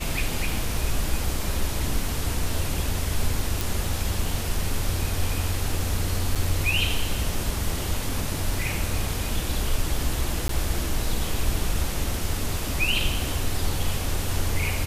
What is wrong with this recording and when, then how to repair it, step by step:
3.61 pop
6.35–6.36 gap 6.2 ms
10.48–10.49 gap 13 ms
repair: de-click; interpolate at 6.35, 6.2 ms; interpolate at 10.48, 13 ms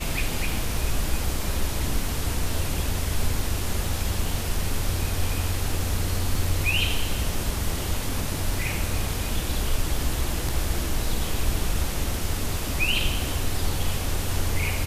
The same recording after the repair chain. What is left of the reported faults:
none

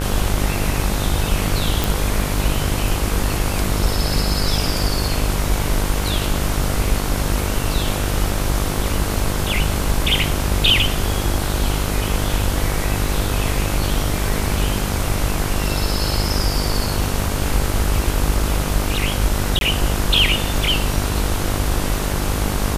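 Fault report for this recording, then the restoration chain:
buzz 50 Hz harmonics 32 -23 dBFS
1.84 pop
19.59–19.61 gap 22 ms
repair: de-click; de-hum 50 Hz, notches 32; interpolate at 19.59, 22 ms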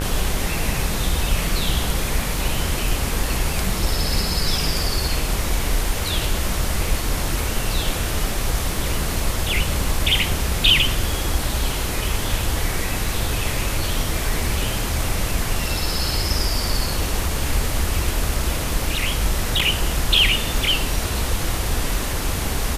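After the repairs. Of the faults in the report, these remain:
none

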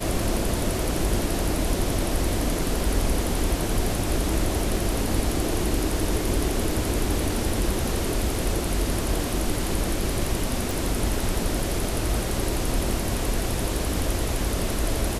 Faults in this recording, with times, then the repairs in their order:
10.71 pop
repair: de-click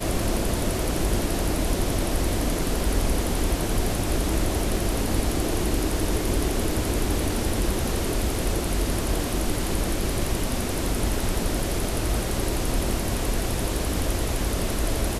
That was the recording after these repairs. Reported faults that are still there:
10.71 pop

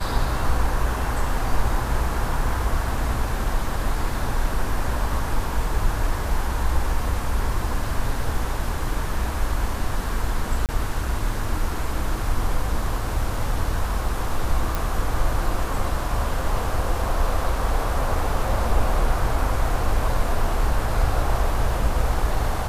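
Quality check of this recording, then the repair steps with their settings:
10.66–10.69 gap 28 ms
14.75 pop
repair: de-click; interpolate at 10.66, 28 ms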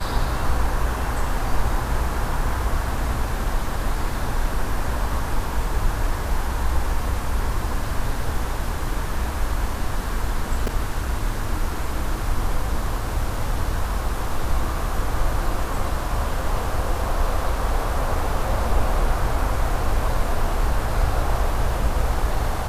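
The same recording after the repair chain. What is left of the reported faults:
none

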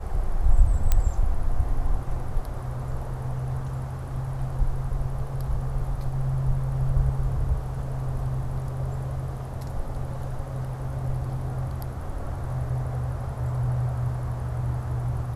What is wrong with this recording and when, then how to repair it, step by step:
0.92 pop -8 dBFS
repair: de-click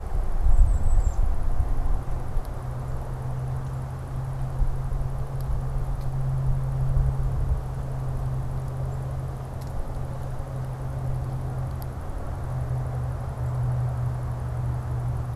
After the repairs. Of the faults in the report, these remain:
none

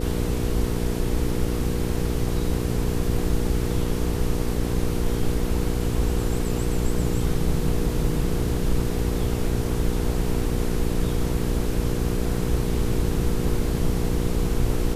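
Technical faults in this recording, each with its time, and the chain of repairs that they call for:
hum 60 Hz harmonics 8 -27 dBFS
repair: de-hum 60 Hz, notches 8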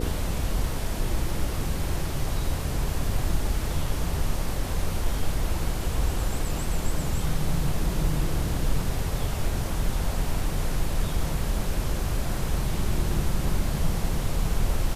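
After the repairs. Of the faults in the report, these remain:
none

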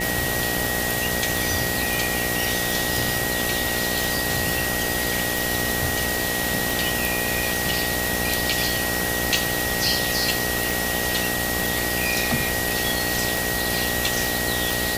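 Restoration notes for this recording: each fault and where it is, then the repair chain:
buzz 60 Hz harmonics 14 -29 dBFS
tick 45 rpm
tone 1900 Hz -27 dBFS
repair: de-click; de-hum 60 Hz, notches 14; notch 1900 Hz, Q 30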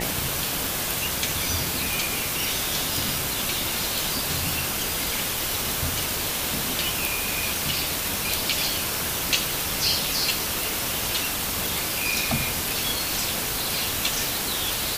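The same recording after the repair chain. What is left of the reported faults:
none

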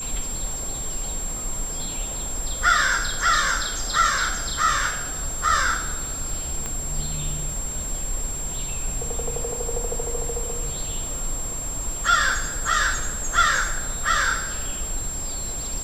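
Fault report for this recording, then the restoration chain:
crackle 21/s -32 dBFS
tone 7500 Hz -29 dBFS
6.66 pop -15 dBFS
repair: de-click; notch 7500 Hz, Q 30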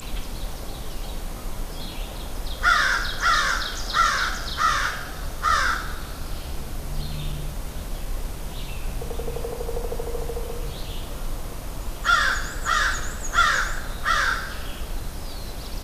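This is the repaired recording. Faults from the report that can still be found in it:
6.66 pop

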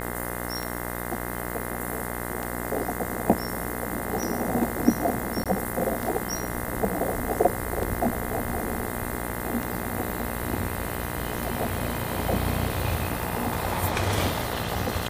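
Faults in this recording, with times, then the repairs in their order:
buzz 60 Hz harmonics 35 -33 dBFS
tick 33 1/3 rpm
5.44–5.46 gap 17 ms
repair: de-click; de-hum 60 Hz, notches 35; interpolate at 5.44, 17 ms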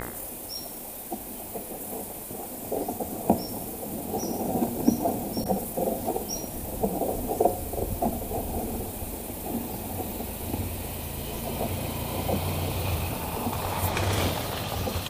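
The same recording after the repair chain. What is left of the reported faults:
none

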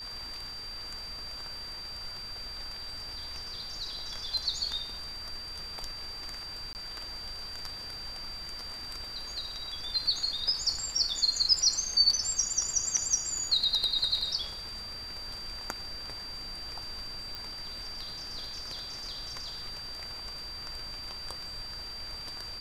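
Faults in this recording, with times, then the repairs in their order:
tone 4700 Hz -39 dBFS
6.73–6.75 gap 19 ms
17.35 pop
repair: de-click; notch 4700 Hz, Q 30; interpolate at 6.73, 19 ms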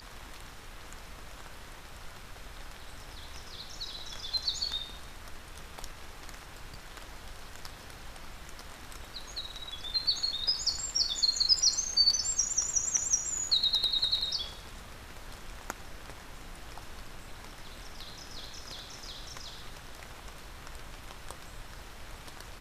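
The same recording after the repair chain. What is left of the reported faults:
none

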